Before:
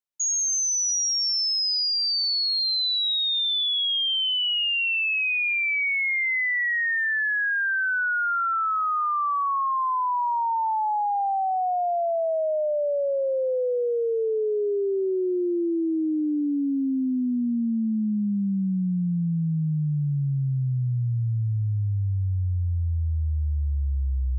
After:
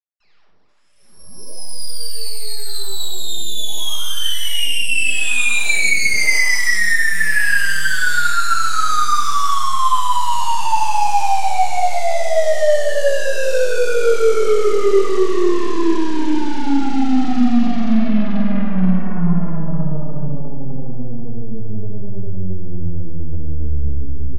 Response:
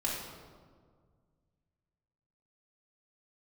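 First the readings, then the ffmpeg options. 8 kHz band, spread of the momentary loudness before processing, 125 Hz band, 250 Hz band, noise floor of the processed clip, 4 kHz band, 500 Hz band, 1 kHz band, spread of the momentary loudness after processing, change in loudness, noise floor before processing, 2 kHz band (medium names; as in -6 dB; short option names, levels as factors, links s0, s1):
no reading, 5 LU, +0.5 dB, +6.5 dB, -33 dBFS, 0.0 dB, +7.5 dB, +6.5 dB, 13 LU, +5.5 dB, -25 dBFS, +6.5 dB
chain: -filter_complex "[0:a]equalizer=f=125:t=o:w=1:g=-6,equalizer=f=250:t=o:w=1:g=11,equalizer=f=500:t=o:w=1:g=12,equalizer=f=1000:t=o:w=1:g=4,equalizer=f=2000:t=o:w=1:g=9,equalizer=f=4000:t=o:w=1:g=-4,asplit=2[s0][s1];[s1]adelay=483,lowpass=f=3500:p=1,volume=0.376,asplit=2[s2][s3];[s3]adelay=483,lowpass=f=3500:p=1,volume=0.4,asplit=2[s4][s5];[s5]adelay=483,lowpass=f=3500:p=1,volume=0.4,asplit=2[s6][s7];[s7]adelay=483,lowpass=f=3500:p=1,volume=0.4[s8];[s0][s2][s4][s6][s8]amix=inputs=5:normalize=0,asplit=2[s9][s10];[s10]aeval=exprs='0.75*sin(PI/2*3.16*val(0)/0.75)':c=same,volume=0.316[s11];[s9][s11]amix=inputs=2:normalize=0,adynamicsmooth=sensitivity=2:basefreq=2600,aresample=11025,asoftclip=type=tanh:threshold=0.211,aresample=44100,aeval=exprs='0.299*(cos(1*acos(clip(val(0)/0.299,-1,1)))-cos(1*PI/2))+0.0944*(cos(3*acos(clip(val(0)/0.299,-1,1)))-cos(3*PI/2))+0.0299*(cos(6*acos(clip(val(0)/0.299,-1,1)))-cos(6*PI/2))':c=same[s12];[1:a]atrim=start_sample=2205,atrim=end_sample=6174,asetrate=31311,aresample=44100[s13];[s12][s13]afir=irnorm=-1:irlink=0,volume=0.501"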